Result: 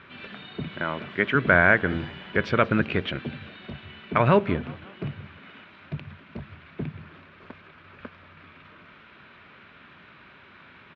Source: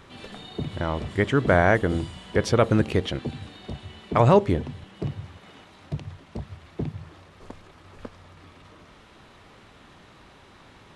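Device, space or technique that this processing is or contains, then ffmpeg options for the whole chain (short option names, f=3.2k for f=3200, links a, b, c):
frequency-shifting delay pedal into a guitar cabinet: -filter_complex "[0:a]asettb=1/sr,asplit=3[a][b][c];[a]atrim=end=0.674[d];[b]atrim=start=0.67:end=1.35,asetpts=PTS-STARTPTS,afade=t=in:d=0.004:c=qsin,afade=t=out:st=0.676:d=0.004:c=qsin,highpass=170[e];[c]atrim=start=1.346[f];[d][e]acrossfade=d=0.004:c1=hsin:c2=qsin[g];[g][f]acrossfade=d=0.004:c1=qsin:c2=hsin,asplit=5[h][i][j][k][l];[i]adelay=179,afreqshift=62,volume=-22dB[m];[j]adelay=358,afreqshift=124,volume=-27.4dB[n];[k]adelay=537,afreqshift=186,volume=-32.7dB[o];[l]adelay=716,afreqshift=248,volume=-38.1dB[p];[h][m][n][o][p]amix=inputs=5:normalize=0,highpass=98,equalizer=f=110:t=q:w=4:g=-5,equalizer=f=310:t=q:w=4:g=-4,equalizer=f=480:t=q:w=4:g=-5,equalizer=f=790:t=q:w=4:g=-7,equalizer=f=1.5k:t=q:w=4:g=8,equalizer=f=2.4k:t=q:w=4:g=7,lowpass=f=3.6k:w=0.5412,lowpass=f=3.6k:w=1.3066"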